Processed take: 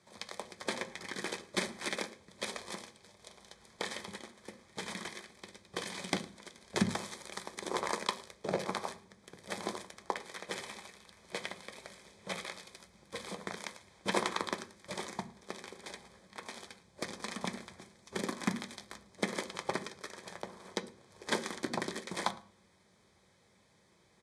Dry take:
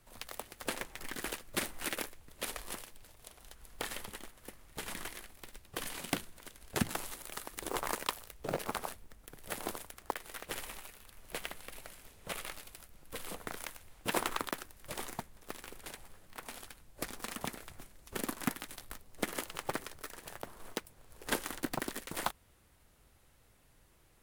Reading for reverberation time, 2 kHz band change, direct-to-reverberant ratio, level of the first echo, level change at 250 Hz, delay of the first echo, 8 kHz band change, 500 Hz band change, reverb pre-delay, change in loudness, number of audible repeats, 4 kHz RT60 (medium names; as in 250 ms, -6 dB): 0.45 s, +1.5 dB, 10.0 dB, -22.5 dB, +2.5 dB, 110 ms, -2.0 dB, +3.0 dB, 3 ms, +1.0 dB, 1, 0.35 s